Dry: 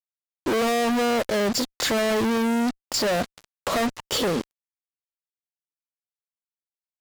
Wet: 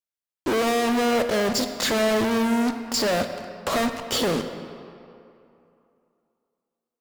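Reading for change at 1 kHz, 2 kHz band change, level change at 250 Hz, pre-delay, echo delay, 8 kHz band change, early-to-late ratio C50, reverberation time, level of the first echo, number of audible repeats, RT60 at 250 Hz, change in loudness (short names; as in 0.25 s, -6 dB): +0.5 dB, +0.5 dB, +0.5 dB, 19 ms, none, +0.5 dB, 8.5 dB, 2.7 s, none, none, 2.5 s, +0.5 dB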